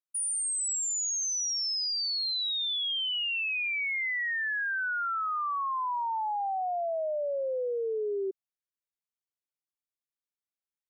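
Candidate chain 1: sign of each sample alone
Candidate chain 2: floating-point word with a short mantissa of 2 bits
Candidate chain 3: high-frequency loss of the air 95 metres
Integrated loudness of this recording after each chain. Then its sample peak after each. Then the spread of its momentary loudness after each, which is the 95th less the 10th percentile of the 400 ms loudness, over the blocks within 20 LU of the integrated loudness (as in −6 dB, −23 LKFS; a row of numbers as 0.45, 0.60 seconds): −30.5, −29.0, −31.5 LKFS; −32.0, −26.5, −28.0 dBFS; 5, 4, 7 LU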